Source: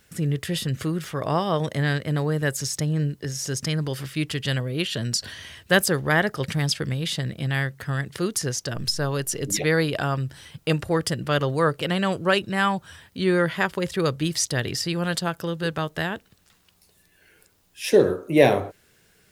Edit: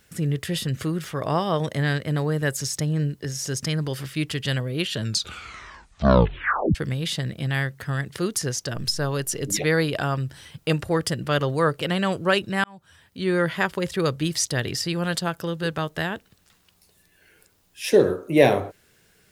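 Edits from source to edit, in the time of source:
4.96 s: tape stop 1.79 s
12.64–13.48 s: fade in

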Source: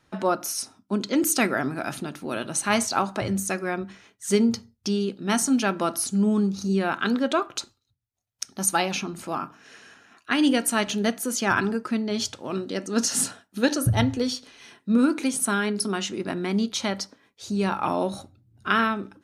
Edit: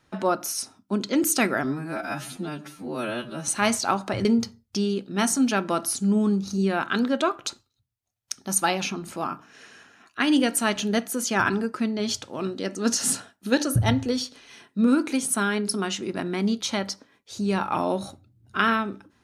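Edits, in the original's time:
1.64–2.56 s: stretch 2×
3.33–4.36 s: delete

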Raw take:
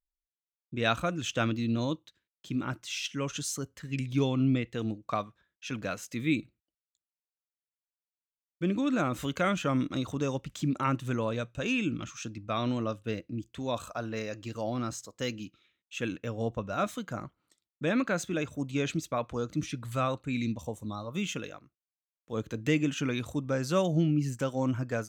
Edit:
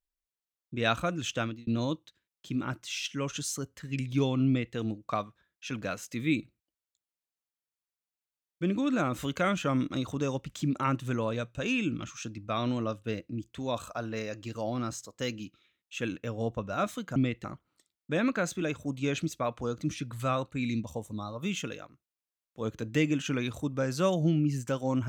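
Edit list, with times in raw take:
1.31–1.67 s: fade out
4.47–4.75 s: copy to 17.16 s

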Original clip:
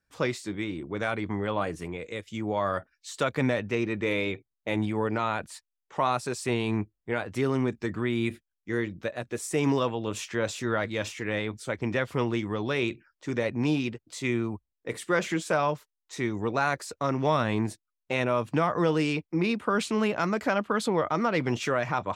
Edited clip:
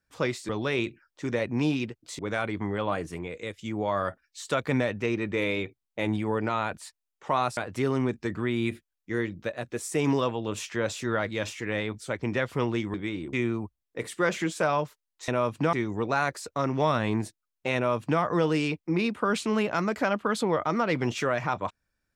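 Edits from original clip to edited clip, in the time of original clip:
0.49–0.88 s: swap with 12.53–14.23 s
6.26–7.16 s: delete
18.21–18.66 s: copy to 16.18 s

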